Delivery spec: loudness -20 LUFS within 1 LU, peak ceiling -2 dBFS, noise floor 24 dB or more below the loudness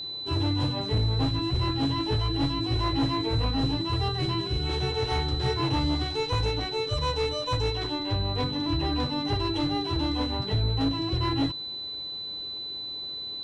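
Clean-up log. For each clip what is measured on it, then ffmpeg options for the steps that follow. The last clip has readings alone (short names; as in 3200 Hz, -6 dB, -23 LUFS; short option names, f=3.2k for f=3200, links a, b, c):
steady tone 4000 Hz; tone level -33 dBFS; loudness -27.5 LUFS; peak -17.0 dBFS; loudness target -20.0 LUFS
-> -af "bandreject=f=4k:w=30"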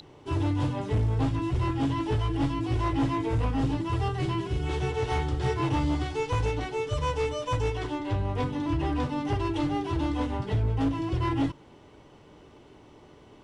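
steady tone none; loudness -28.5 LUFS; peak -18.0 dBFS; loudness target -20.0 LUFS
-> -af "volume=8.5dB"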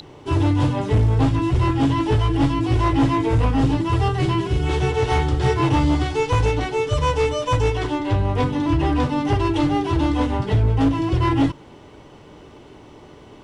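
loudness -20.0 LUFS; peak -9.5 dBFS; noise floor -44 dBFS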